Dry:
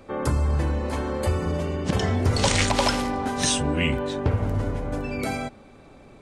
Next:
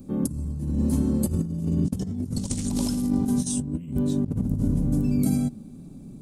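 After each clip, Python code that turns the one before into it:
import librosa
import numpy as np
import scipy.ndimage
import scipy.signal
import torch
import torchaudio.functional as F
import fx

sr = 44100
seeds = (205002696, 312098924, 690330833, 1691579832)

y = fx.curve_eq(x, sr, hz=(100.0, 170.0, 260.0, 470.0, 2000.0, 12000.0), db=(0, 12, 6, -12, -23, 9))
y = fx.over_compress(y, sr, threshold_db=-24.0, ratio=-0.5)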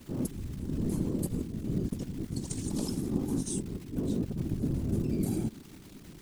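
y = fx.dmg_crackle(x, sr, seeds[0], per_s=360.0, level_db=-33.0)
y = fx.whisperise(y, sr, seeds[1])
y = y * librosa.db_to_amplitude(-7.5)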